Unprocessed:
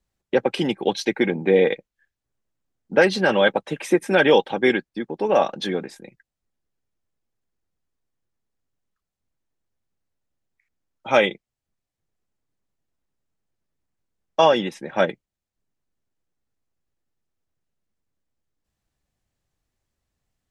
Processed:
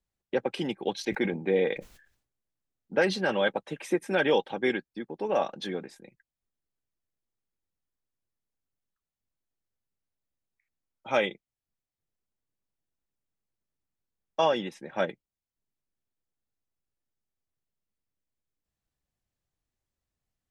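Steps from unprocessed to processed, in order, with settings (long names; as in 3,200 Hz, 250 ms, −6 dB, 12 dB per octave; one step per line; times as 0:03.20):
0:00.96–0:03.30: level that may fall only so fast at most 100 dB per second
level −8.5 dB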